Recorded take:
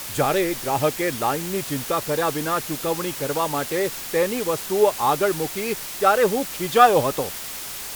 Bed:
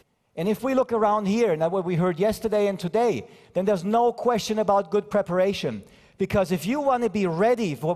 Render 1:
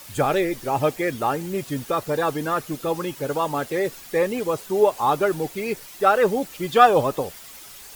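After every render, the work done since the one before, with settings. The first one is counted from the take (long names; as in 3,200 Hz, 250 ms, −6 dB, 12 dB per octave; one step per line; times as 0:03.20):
broadband denoise 11 dB, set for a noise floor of −33 dBFS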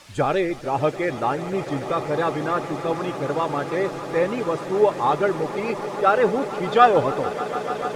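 high-frequency loss of the air 80 metres
echo that builds up and dies away 147 ms, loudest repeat 8, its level −17 dB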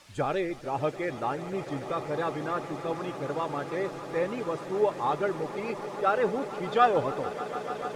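level −7.5 dB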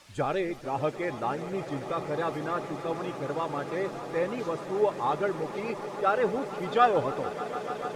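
mix in bed −24.5 dB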